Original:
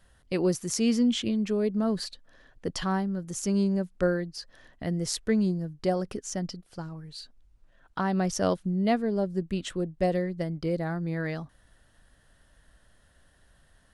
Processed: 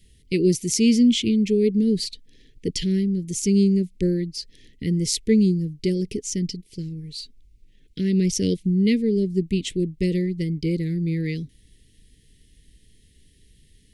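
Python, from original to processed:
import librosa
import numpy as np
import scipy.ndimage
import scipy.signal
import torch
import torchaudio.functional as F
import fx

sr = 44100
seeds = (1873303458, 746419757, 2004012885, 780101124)

y = scipy.signal.sosfilt(scipy.signal.cheby1(4, 1.0, [440.0, 2100.0], 'bandstop', fs=sr, output='sos'), x)
y = y * librosa.db_to_amplitude(7.5)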